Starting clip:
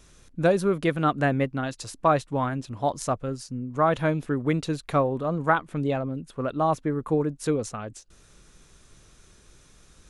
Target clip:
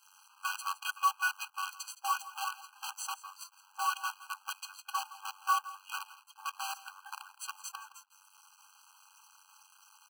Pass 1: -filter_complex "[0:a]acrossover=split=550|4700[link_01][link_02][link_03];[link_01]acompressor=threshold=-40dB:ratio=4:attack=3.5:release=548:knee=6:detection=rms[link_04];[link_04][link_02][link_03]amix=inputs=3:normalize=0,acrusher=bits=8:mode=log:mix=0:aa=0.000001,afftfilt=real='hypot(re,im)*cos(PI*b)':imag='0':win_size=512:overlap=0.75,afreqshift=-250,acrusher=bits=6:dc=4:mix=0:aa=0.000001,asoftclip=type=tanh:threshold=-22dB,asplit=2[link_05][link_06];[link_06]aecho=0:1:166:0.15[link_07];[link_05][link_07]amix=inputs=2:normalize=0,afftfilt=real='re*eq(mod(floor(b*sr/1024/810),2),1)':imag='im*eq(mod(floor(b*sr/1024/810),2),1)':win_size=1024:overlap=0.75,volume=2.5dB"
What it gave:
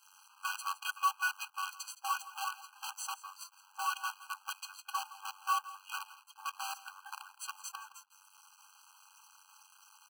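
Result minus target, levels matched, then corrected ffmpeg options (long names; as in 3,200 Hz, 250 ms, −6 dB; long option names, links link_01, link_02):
soft clipping: distortion +13 dB
-filter_complex "[0:a]acrossover=split=550|4700[link_01][link_02][link_03];[link_01]acompressor=threshold=-40dB:ratio=4:attack=3.5:release=548:knee=6:detection=rms[link_04];[link_04][link_02][link_03]amix=inputs=3:normalize=0,acrusher=bits=8:mode=log:mix=0:aa=0.000001,afftfilt=real='hypot(re,im)*cos(PI*b)':imag='0':win_size=512:overlap=0.75,afreqshift=-250,acrusher=bits=6:dc=4:mix=0:aa=0.000001,asoftclip=type=tanh:threshold=-13dB,asplit=2[link_05][link_06];[link_06]aecho=0:1:166:0.15[link_07];[link_05][link_07]amix=inputs=2:normalize=0,afftfilt=real='re*eq(mod(floor(b*sr/1024/810),2),1)':imag='im*eq(mod(floor(b*sr/1024/810),2),1)':win_size=1024:overlap=0.75,volume=2.5dB"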